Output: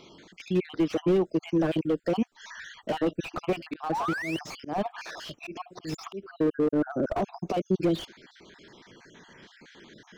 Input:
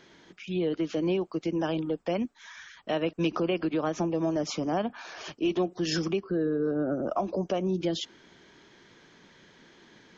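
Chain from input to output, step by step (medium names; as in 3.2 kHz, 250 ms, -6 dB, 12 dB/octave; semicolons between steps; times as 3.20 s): random holes in the spectrogram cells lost 41%; 3.67–6.41 s: slow attack 186 ms; 3.92–4.39 s: painted sound rise 780–3100 Hz -34 dBFS; slew-rate limiter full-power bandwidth 22 Hz; trim +5.5 dB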